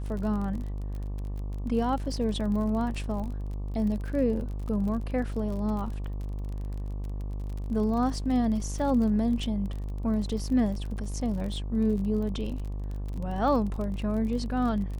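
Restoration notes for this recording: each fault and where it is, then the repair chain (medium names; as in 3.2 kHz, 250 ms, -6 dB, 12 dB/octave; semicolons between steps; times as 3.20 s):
buzz 50 Hz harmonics 24 -33 dBFS
crackle 39 per s -35 dBFS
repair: de-click; de-hum 50 Hz, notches 24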